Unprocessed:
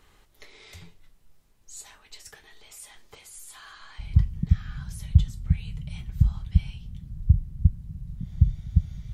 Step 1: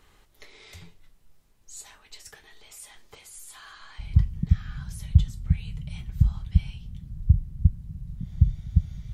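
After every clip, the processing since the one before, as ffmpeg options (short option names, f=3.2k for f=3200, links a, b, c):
-af anull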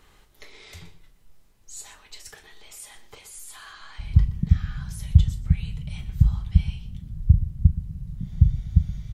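-filter_complex "[0:a]asplit=2[a][b];[b]adelay=38,volume=-13dB[c];[a][c]amix=inputs=2:normalize=0,asplit=2[d][e];[e]adelay=122.4,volume=-14dB,highshelf=f=4k:g=-2.76[f];[d][f]amix=inputs=2:normalize=0,volume=2.5dB"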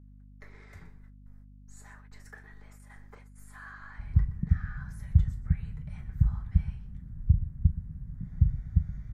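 -af "highshelf=f=2.3k:t=q:w=3:g=-10,agate=range=-34dB:threshold=-49dB:ratio=16:detection=peak,aeval=exprs='val(0)+0.00631*(sin(2*PI*50*n/s)+sin(2*PI*2*50*n/s)/2+sin(2*PI*3*50*n/s)/3+sin(2*PI*4*50*n/s)/4+sin(2*PI*5*50*n/s)/5)':c=same,volume=-6.5dB"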